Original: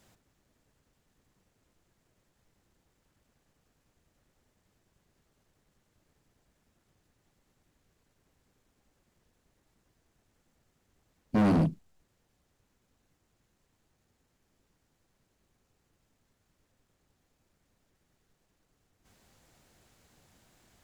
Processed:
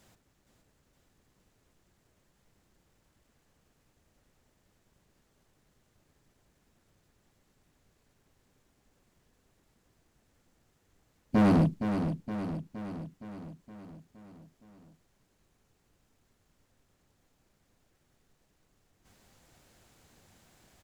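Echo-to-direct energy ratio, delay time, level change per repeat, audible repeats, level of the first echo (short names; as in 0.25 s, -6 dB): -6.0 dB, 0.467 s, -4.5 dB, 6, -8.0 dB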